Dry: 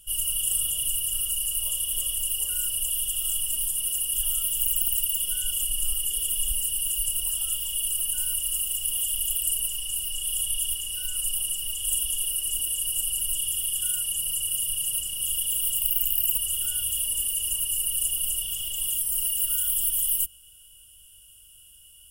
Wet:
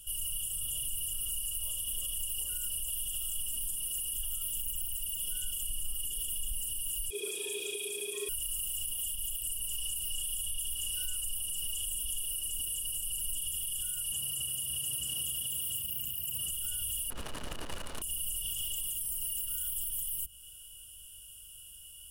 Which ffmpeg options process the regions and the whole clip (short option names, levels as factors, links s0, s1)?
-filter_complex "[0:a]asettb=1/sr,asplit=3[s0][s1][s2];[s0]atrim=end=7.104[s3];[s1]atrim=start=7.1:end=8.29,asetpts=PTS-STARTPTS,afade=t=in:d=0.004:c=qsin,afade=t=out:st=1.186:d=0.004:c=qsin,lowpass=7200,aeval=exprs='val(0)*sin(2*PI*410*n/s)':c=same[s4];[s2]atrim=start=8.286[s5];[s3][s4]acrossfade=d=0.004:c1=hsin:c2=qsin[s6];[s6][s5]acrossfade=d=0.004:c1=qsin:c2=hsin,asettb=1/sr,asplit=3[s7][s8][s9];[s7]atrim=end=14.124[s10];[s8]atrim=start=14.12:end=16.51,asetpts=PTS-STARTPTS,afade=t=in:d=0.004:c=qsin,afade=t=out:st=2.386:d=0.004:c=qsin,highpass=100,highshelf=f=2600:g=-6.5,acontrast=86[s11];[s9]atrim=start=16.506[s12];[s10][s11]acrossfade=d=0.004:c1=hsin:c2=qsin[s13];[s13][s12]acrossfade=d=0.004:c1=qsin:c2=hsin,asettb=1/sr,asplit=3[s14][s15][s16];[s14]atrim=end=17.104[s17];[s15]atrim=start=17.1:end=18.02,asetpts=PTS-STARTPTS,afade=t=in:d=0.004:c=qsin,afade=t=out:st=0.916:d=0.004:c=qsin,acrusher=bits=5:dc=4:mix=0:aa=0.000001,adynamicsmooth=sensitivity=3:basefreq=740,bandreject=f=770:w=13[s18];[s16]atrim=start=18.016[s19];[s17][s18]acrossfade=d=0.004:c1=hsin:c2=qsin[s20];[s20][s19]acrossfade=d=0.004:c1=qsin:c2=hsin,equalizer=f=2100:t=o:w=0.31:g=-5,acrossover=split=340[s21][s22];[s22]acompressor=threshold=0.0251:ratio=2.5[s23];[s21][s23]amix=inputs=2:normalize=0,alimiter=level_in=1.41:limit=0.0631:level=0:latency=1:release=57,volume=0.708,volume=1.19"